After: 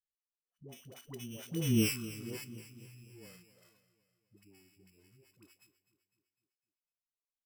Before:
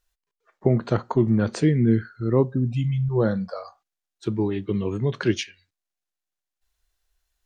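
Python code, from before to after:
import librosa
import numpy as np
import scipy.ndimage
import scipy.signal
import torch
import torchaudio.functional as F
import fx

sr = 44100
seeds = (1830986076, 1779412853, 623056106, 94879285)

p1 = np.r_[np.sort(x[:len(x) // 16 * 16].reshape(-1, 16), axis=1).ravel(), x[len(x) // 16 * 16:]]
p2 = fx.doppler_pass(p1, sr, speed_mps=25, closest_m=1.8, pass_at_s=1.74)
p3 = fx.high_shelf(p2, sr, hz=3700.0, db=10.0)
p4 = fx.dispersion(p3, sr, late='highs', ms=113.0, hz=510.0)
p5 = p4 + fx.echo_feedback(p4, sr, ms=252, feedback_pct=53, wet_db=-15, dry=0)
y = p5 * librosa.db_to_amplitude(-8.0)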